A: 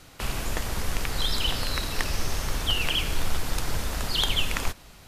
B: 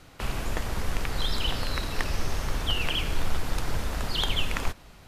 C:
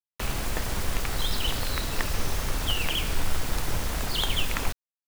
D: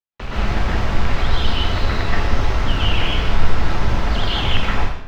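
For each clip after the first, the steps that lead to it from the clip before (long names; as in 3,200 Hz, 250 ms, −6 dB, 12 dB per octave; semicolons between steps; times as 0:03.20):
high-shelf EQ 3,600 Hz −7.5 dB
in parallel at −10.5 dB: wrap-around overflow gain 26 dB; on the sum: bit reduction 6 bits
high-frequency loss of the air 210 metres; dense smooth reverb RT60 0.83 s, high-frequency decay 0.85×, pre-delay 110 ms, DRR −8 dB; level +2 dB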